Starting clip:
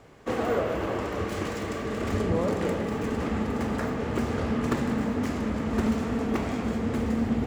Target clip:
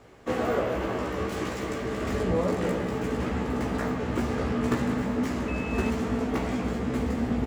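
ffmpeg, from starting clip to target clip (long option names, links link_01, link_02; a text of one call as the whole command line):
ffmpeg -i in.wav -filter_complex "[0:a]asplit=2[link_01][link_02];[link_02]adelay=16,volume=-3dB[link_03];[link_01][link_03]amix=inputs=2:normalize=0,asettb=1/sr,asplit=3[link_04][link_05][link_06];[link_04]atrim=end=5.484[link_07];[link_05]atrim=start=5.48:end=5.9,asetpts=PTS-STARTPTS,afade=type=in:duration=0.004:curve=qsin,afade=type=out:start_time=0.416:duration=0.004:curve=qsin,aeval=exprs='val(0)+0.0158*sin(2*PI*2600*n/s)':channel_layout=same[link_08];[link_06]atrim=start=5.896[link_09];[link_07][link_08]acrossfade=duration=0.004:curve1=hsin:curve2=qsin[link_10];[link_10][link_09]acrossfade=duration=0.004:curve1=qsin:curve2=hsin,volume=-1.5dB" out.wav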